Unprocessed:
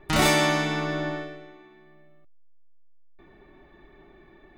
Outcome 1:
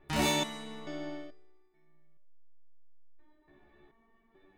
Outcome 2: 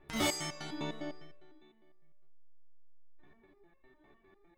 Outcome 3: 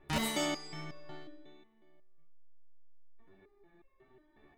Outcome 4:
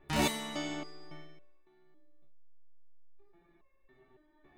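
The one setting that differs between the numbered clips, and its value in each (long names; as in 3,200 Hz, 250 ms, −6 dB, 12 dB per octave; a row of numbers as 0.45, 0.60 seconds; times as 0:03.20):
step-sequenced resonator, speed: 2.3, 9.9, 5.5, 3.6 Hertz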